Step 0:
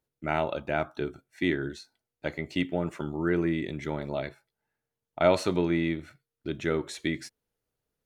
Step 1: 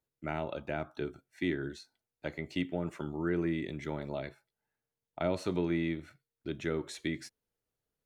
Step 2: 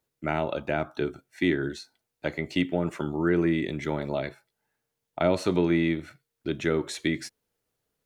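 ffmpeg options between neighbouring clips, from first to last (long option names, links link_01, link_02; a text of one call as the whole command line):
ffmpeg -i in.wav -filter_complex "[0:a]acrossover=split=410[link_01][link_02];[link_02]acompressor=threshold=-31dB:ratio=3[link_03];[link_01][link_03]amix=inputs=2:normalize=0,volume=-4.5dB" out.wav
ffmpeg -i in.wav -af "lowshelf=frequency=88:gain=-6,volume=8.5dB" out.wav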